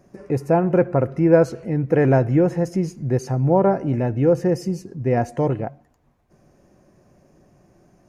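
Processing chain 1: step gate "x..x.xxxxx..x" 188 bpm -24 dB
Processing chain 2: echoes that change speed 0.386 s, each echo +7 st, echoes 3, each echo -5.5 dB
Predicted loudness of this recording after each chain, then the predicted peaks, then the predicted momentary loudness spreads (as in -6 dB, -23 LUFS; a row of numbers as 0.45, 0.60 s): -22.0, -19.0 LUFS; -2.0, -1.5 dBFS; 10, 10 LU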